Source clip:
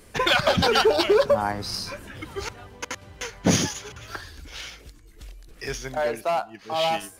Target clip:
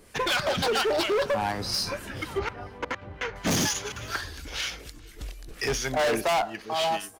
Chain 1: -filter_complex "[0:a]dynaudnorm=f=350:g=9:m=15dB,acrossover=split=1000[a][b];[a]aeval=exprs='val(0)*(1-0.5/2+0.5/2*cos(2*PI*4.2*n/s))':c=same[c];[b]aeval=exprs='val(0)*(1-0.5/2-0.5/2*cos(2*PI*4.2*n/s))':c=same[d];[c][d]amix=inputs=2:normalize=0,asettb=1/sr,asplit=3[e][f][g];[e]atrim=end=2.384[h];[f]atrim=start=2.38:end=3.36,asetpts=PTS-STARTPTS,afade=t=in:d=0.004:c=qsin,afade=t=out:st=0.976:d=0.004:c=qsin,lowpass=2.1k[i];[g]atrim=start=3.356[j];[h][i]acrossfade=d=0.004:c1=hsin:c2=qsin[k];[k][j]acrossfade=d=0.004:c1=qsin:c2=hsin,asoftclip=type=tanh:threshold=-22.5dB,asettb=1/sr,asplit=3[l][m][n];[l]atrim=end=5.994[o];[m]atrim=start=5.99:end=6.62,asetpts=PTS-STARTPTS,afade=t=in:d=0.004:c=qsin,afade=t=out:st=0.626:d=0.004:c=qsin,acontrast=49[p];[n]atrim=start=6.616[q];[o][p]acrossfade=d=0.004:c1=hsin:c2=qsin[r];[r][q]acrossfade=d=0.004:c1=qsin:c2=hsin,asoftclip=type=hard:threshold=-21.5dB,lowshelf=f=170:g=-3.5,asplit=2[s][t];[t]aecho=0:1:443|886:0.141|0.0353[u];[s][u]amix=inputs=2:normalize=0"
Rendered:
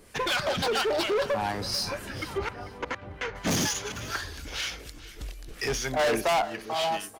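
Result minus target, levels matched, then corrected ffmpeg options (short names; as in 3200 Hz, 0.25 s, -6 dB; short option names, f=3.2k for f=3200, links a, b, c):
echo-to-direct +9 dB; soft clip: distortion +8 dB
-filter_complex "[0:a]dynaudnorm=f=350:g=9:m=15dB,acrossover=split=1000[a][b];[a]aeval=exprs='val(0)*(1-0.5/2+0.5/2*cos(2*PI*4.2*n/s))':c=same[c];[b]aeval=exprs='val(0)*(1-0.5/2-0.5/2*cos(2*PI*4.2*n/s))':c=same[d];[c][d]amix=inputs=2:normalize=0,asettb=1/sr,asplit=3[e][f][g];[e]atrim=end=2.384[h];[f]atrim=start=2.38:end=3.36,asetpts=PTS-STARTPTS,afade=t=in:d=0.004:c=qsin,afade=t=out:st=0.976:d=0.004:c=qsin,lowpass=2.1k[i];[g]atrim=start=3.356[j];[h][i]acrossfade=d=0.004:c1=hsin:c2=qsin[k];[k][j]acrossfade=d=0.004:c1=qsin:c2=hsin,asoftclip=type=tanh:threshold=-13dB,asettb=1/sr,asplit=3[l][m][n];[l]atrim=end=5.994[o];[m]atrim=start=5.99:end=6.62,asetpts=PTS-STARTPTS,afade=t=in:d=0.004:c=qsin,afade=t=out:st=0.626:d=0.004:c=qsin,acontrast=49[p];[n]atrim=start=6.616[q];[o][p]acrossfade=d=0.004:c1=hsin:c2=qsin[r];[r][q]acrossfade=d=0.004:c1=qsin:c2=hsin,asoftclip=type=hard:threshold=-21.5dB,lowshelf=f=170:g=-3.5,asplit=2[s][t];[t]aecho=0:1:443|886:0.0501|0.0125[u];[s][u]amix=inputs=2:normalize=0"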